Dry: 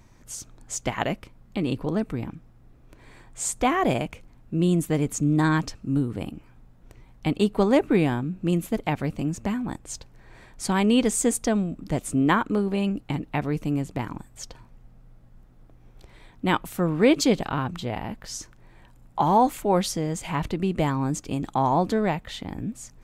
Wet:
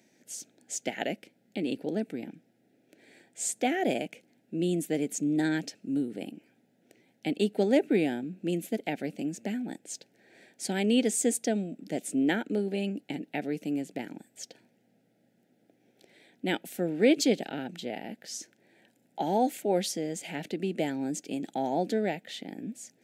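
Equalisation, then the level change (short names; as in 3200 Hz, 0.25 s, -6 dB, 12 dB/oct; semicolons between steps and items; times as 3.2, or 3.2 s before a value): HPF 210 Hz 24 dB/oct; Butterworth band-stop 1100 Hz, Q 1.3; -3.5 dB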